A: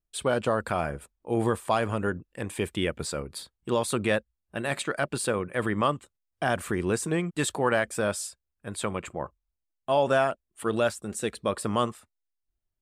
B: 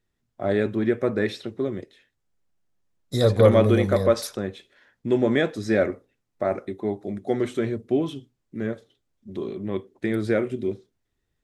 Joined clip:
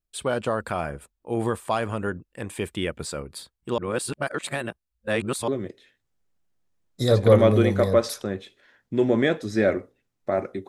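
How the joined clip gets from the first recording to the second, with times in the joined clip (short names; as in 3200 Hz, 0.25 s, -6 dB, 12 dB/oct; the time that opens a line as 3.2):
A
3.78–5.48 reverse
5.48 switch to B from 1.61 s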